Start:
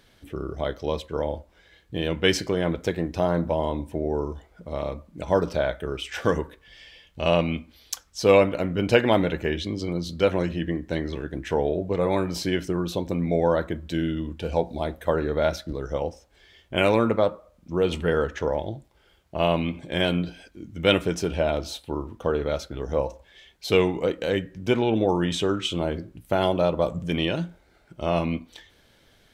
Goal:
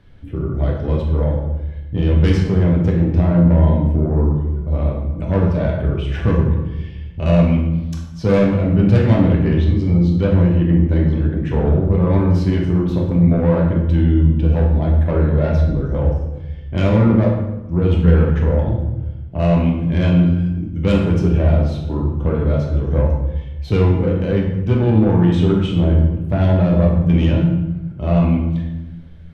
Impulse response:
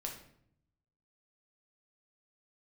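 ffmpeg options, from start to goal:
-filter_complex "[0:a]bass=f=250:g=14,treble=f=4000:g=-15,acrossover=split=230[s0][s1];[s1]asoftclip=type=tanh:threshold=0.141[s2];[s0][s2]amix=inputs=2:normalize=0[s3];[1:a]atrim=start_sample=2205,asetrate=25137,aresample=44100[s4];[s3][s4]afir=irnorm=-1:irlink=0"

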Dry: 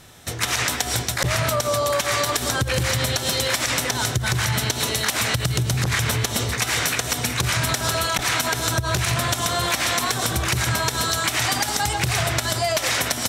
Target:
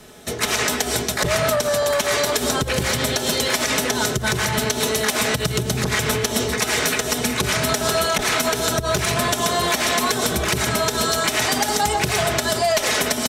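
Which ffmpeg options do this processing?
-filter_complex "[0:a]aecho=1:1:4.7:0.55,acrossover=split=300|510|3200[s0][s1][s2][s3];[s1]aeval=exprs='0.0668*sin(PI/2*2.51*val(0)/0.0668)':c=same[s4];[s0][s4][s2][s3]amix=inputs=4:normalize=0"

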